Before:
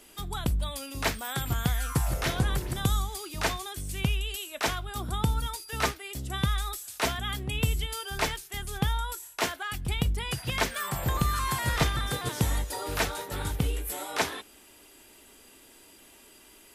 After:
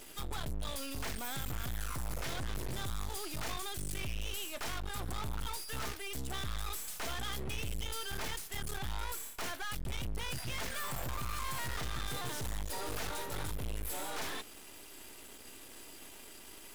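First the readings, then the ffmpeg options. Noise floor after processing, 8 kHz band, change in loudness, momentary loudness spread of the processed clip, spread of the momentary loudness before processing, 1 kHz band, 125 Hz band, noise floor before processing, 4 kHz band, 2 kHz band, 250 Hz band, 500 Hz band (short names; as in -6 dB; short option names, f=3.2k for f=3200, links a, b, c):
-51 dBFS, -6.5 dB, -9.5 dB, 11 LU, 7 LU, -9.5 dB, -12.0 dB, -55 dBFS, -7.5 dB, -9.0 dB, -11.0 dB, -9.5 dB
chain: -af "alimiter=limit=-21dB:level=0:latency=1,aeval=exprs='max(val(0),0)':c=same,aeval=exprs='(tanh(56.2*val(0)+0.65)-tanh(0.65))/56.2':c=same,volume=11dB"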